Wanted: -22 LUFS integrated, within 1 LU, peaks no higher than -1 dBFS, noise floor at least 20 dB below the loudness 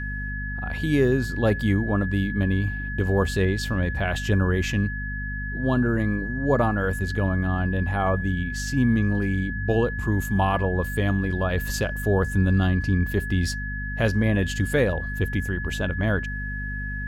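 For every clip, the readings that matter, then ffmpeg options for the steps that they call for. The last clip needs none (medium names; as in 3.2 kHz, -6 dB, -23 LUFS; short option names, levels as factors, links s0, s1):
hum 50 Hz; highest harmonic 250 Hz; hum level -29 dBFS; steady tone 1.7 kHz; tone level -32 dBFS; loudness -24.5 LUFS; peak level -8.5 dBFS; loudness target -22.0 LUFS
-> -af "bandreject=f=50:t=h:w=6,bandreject=f=100:t=h:w=6,bandreject=f=150:t=h:w=6,bandreject=f=200:t=h:w=6,bandreject=f=250:t=h:w=6"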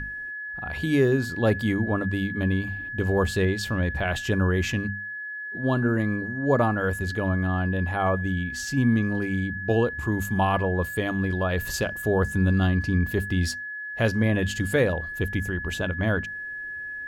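hum not found; steady tone 1.7 kHz; tone level -32 dBFS
-> -af "bandreject=f=1700:w=30"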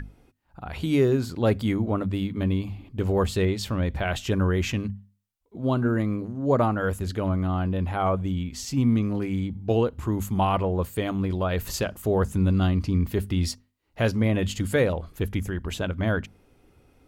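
steady tone not found; loudness -26.0 LUFS; peak level -10.0 dBFS; loudness target -22.0 LUFS
-> -af "volume=1.58"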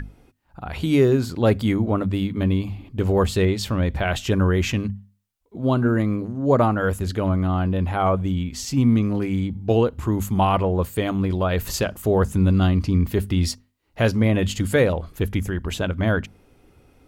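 loudness -22.0 LUFS; peak level -6.0 dBFS; noise floor -62 dBFS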